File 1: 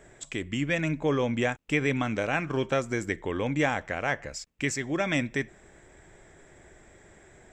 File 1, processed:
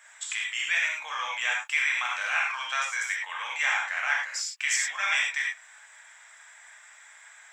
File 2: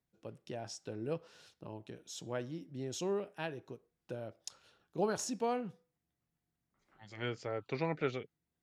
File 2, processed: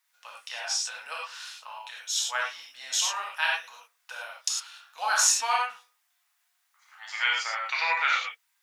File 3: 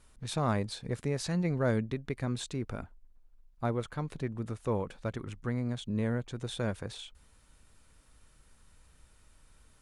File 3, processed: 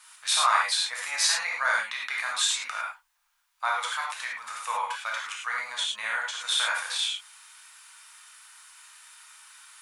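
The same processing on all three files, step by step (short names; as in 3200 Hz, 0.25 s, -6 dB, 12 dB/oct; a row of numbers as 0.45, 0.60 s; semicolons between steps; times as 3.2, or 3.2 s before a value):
in parallel at +1 dB: limiter -21.5 dBFS; on the sum: inverse Chebyshev high-pass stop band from 400 Hz, stop band 50 dB; non-linear reverb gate 0.13 s flat, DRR -3 dB; match loudness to -27 LUFS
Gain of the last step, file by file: -2.5, +8.5, +6.0 dB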